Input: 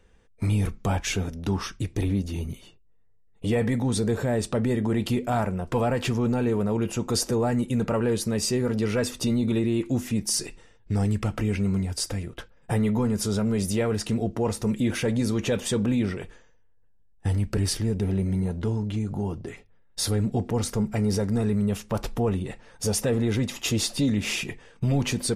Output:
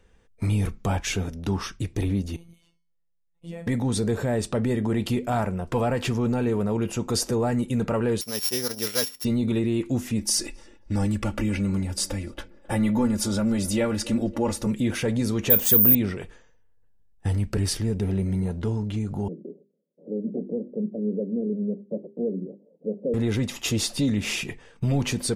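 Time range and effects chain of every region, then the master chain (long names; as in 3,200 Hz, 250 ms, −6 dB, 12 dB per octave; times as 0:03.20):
0:02.36–0:03.67: tuned comb filter 200 Hz, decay 0.48 s, harmonics odd, mix 80% + phases set to zero 169 Hz
0:08.21–0:09.25: samples sorted by size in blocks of 8 samples + noise gate −26 dBFS, range −13 dB + spectral tilt +3.5 dB per octave
0:10.19–0:14.67: comb filter 3.5 ms, depth 76% + feedback echo with a band-pass in the loop 269 ms, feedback 56%, band-pass 570 Hz, level −17.5 dB
0:15.50–0:15.95: bad sample-rate conversion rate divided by 3×, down none, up zero stuff + high-shelf EQ 8,000 Hz +4.5 dB
0:19.28–0:23.14: Chebyshev band-pass filter 170–580 Hz, order 4 + mains-hum notches 50/100/150/200/250/300/350/400 Hz
whole clip: no processing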